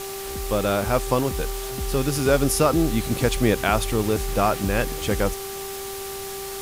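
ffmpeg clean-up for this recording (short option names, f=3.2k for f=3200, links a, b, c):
-af "adeclick=t=4,bandreject=f=391.5:t=h:w=4,bandreject=f=783:t=h:w=4,bandreject=f=1.1745k:t=h:w=4,afwtdn=0.018"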